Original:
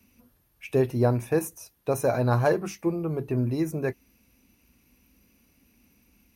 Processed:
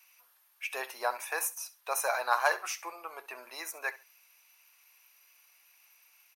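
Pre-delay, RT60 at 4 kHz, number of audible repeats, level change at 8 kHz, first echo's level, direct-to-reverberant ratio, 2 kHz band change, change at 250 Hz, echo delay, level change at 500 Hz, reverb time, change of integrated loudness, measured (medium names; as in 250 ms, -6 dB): no reverb, no reverb, 2, +4.5 dB, -17.5 dB, no reverb, +4.5 dB, -31.0 dB, 67 ms, -12.5 dB, no reverb, -7.0 dB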